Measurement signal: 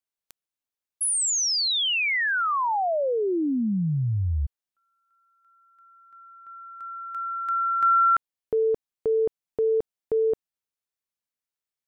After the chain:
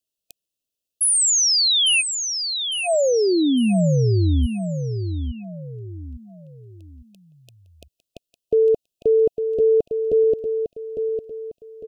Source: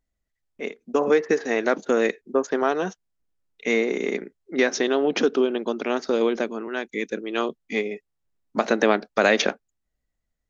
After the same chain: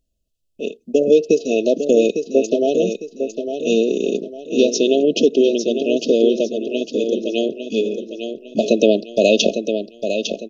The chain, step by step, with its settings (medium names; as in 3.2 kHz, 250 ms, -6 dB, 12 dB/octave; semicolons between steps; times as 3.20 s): brick-wall FIR band-stop 700–2500 Hz; on a send: feedback delay 854 ms, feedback 36%, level -7.5 dB; on the sum: trim +6.5 dB